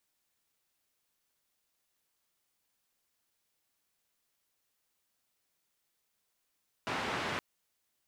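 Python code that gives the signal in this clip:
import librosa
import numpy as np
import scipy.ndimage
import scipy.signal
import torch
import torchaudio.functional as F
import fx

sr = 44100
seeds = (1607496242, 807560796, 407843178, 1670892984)

y = fx.band_noise(sr, seeds[0], length_s=0.52, low_hz=83.0, high_hz=2000.0, level_db=-35.5)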